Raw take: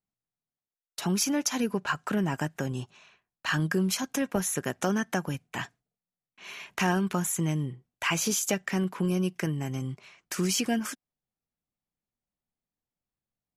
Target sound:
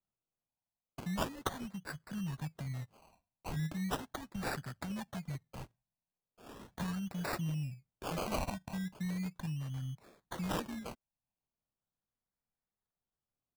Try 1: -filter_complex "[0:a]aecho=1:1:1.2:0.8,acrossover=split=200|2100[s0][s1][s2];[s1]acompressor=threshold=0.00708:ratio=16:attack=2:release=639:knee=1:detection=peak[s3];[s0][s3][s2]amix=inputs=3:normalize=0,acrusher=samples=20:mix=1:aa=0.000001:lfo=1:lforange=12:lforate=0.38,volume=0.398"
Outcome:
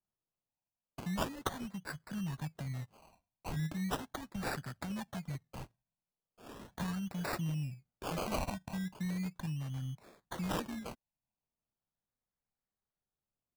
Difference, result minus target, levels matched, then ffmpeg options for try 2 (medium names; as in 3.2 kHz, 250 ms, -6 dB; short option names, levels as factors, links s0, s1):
compression: peak gain reduction -7.5 dB
-filter_complex "[0:a]aecho=1:1:1.2:0.8,acrossover=split=200|2100[s0][s1][s2];[s1]acompressor=threshold=0.00282:ratio=16:attack=2:release=639:knee=1:detection=peak[s3];[s0][s3][s2]amix=inputs=3:normalize=0,acrusher=samples=20:mix=1:aa=0.000001:lfo=1:lforange=12:lforate=0.38,volume=0.398"